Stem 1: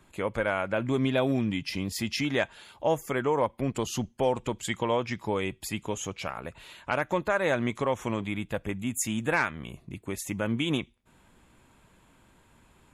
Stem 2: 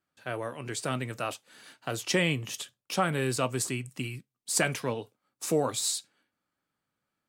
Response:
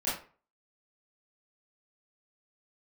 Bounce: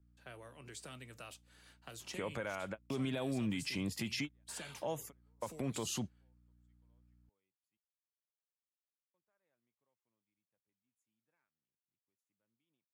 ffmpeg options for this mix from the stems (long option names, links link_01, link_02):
-filter_complex "[0:a]highpass=100,adelay=2000,volume=-3dB,asplit=3[link_01][link_02][link_03];[link_01]atrim=end=7.77,asetpts=PTS-STARTPTS,afade=type=out:start_time=7.766:duration=0.004:curve=hsin[link_04];[link_02]atrim=start=7.77:end=9.14,asetpts=PTS-STARTPTS,volume=0[link_05];[link_03]atrim=start=9.14,asetpts=PTS-STARTPTS,afade=type=in:duration=0.004:curve=hsin[link_06];[link_04][link_05][link_06]concat=n=3:v=0:a=1[link_07];[1:a]acrossover=split=110|2300[link_08][link_09][link_10];[link_08]acompressor=threshold=-51dB:ratio=4[link_11];[link_09]acompressor=threshold=-40dB:ratio=4[link_12];[link_10]acompressor=threshold=-35dB:ratio=4[link_13];[link_11][link_12][link_13]amix=inputs=3:normalize=0,aeval=exprs='val(0)+0.00178*(sin(2*PI*60*n/s)+sin(2*PI*2*60*n/s)/2+sin(2*PI*3*60*n/s)/3+sin(2*PI*4*60*n/s)/4+sin(2*PI*5*60*n/s)/5)':channel_layout=same,volume=-11.5dB,asplit=2[link_14][link_15];[link_15]apad=whole_len=658469[link_16];[link_07][link_16]sidechaingate=range=-56dB:threshold=-59dB:ratio=16:detection=peak[link_17];[link_17][link_14]amix=inputs=2:normalize=0,acrossover=split=130|3000[link_18][link_19][link_20];[link_19]acompressor=threshold=-33dB:ratio=2[link_21];[link_18][link_21][link_20]amix=inputs=3:normalize=0,alimiter=level_in=4.5dB:limit=-24dB:level=0:latency=1:release=71,volume=-4.5dB"